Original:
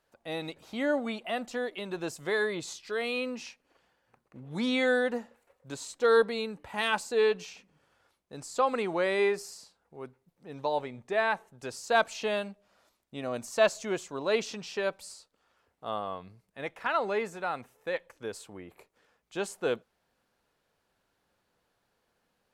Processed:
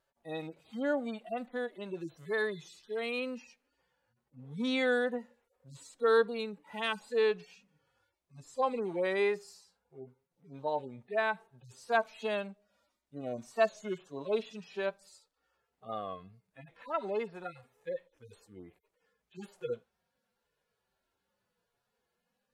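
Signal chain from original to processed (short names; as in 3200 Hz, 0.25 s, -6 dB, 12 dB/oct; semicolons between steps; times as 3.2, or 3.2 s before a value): median-filter separation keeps harmonic; wow and flutter 33 cents; gain -3 dB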